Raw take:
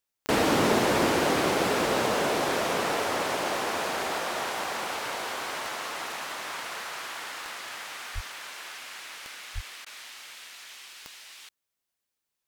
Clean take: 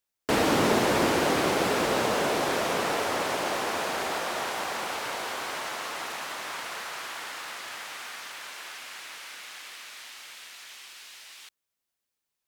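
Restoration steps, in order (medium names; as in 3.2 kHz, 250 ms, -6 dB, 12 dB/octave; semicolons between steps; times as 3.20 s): de-click; de-plosive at 8.14/9.54 s; interpolate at 9.85 s, 12 ms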